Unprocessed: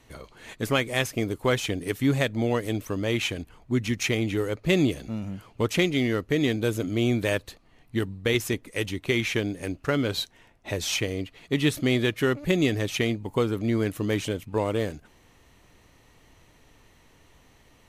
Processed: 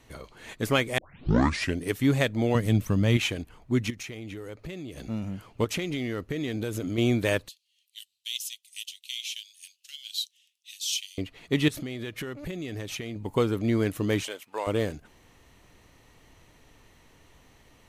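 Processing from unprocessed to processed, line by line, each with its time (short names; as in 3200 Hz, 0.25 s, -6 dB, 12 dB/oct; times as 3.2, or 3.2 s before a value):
0.98 tape start 0.83 s
2.55–3.17 resonant low shelf 250 Hz +8 dB, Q 1.5
3.9–4.98 compressor 10:1, threshold -35 dBFS
5.64–6.98 compressor 12:1, threshold -26 dBFS
7.48–11.18 elliptic high-pass 3000 Hz, stop band 70 dB
11.68–13.16 compressor 12:1, threshold -31 dBFS
14.23–14.67 HPF 710 Hz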